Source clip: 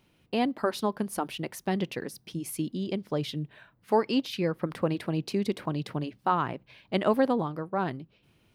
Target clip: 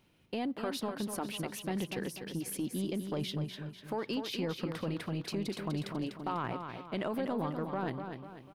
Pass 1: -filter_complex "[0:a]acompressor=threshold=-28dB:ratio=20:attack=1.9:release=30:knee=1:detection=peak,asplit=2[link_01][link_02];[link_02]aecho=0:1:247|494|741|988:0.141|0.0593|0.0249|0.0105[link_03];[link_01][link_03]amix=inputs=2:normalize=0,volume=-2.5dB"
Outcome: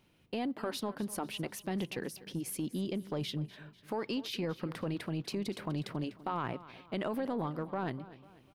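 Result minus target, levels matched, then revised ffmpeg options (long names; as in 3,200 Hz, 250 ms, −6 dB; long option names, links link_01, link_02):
echo-to-direct −10 dB
-filter_complex "[0:a]acompressor=threshold=-28dB:ratio=20:attack=1.9:release=30:knee=1:detection=peak,asplit=2[link_01][link_02];[link_02]aecho=0:1:247|494|741|988|1235:0.447|0.188|0.0788|0.0331|0.0139[link_03];[link_01][link_03]amix=inputs=2:normalize=0,volume=-2.5dB"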